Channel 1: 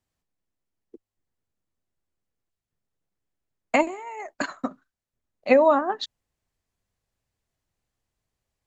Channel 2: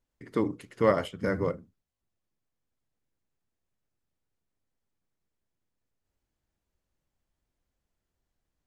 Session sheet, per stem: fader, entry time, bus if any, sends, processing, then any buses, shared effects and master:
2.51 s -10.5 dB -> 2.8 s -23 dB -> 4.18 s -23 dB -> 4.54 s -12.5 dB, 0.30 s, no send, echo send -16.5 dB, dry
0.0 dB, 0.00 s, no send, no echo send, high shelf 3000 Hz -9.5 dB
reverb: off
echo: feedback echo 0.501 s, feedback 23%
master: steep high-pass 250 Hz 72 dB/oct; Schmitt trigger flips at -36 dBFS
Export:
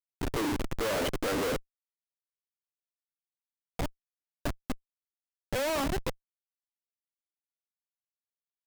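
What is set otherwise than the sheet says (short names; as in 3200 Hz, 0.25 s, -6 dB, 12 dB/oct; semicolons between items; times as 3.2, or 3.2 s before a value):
stem 1: entry 0.30 s -> 0.05 s; stem 2 0.0 dB -> +9.0 dB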